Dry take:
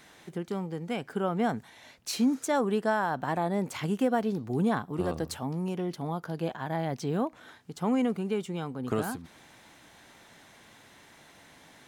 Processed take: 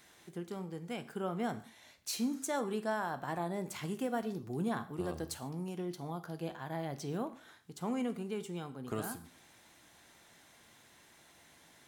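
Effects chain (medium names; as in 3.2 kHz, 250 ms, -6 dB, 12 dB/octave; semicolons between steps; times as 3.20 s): treble shelf 5.4 kHz +8 dB; reverberation, pre-delay 3 ms, DRR 9.5 dB; trim -8.5 dB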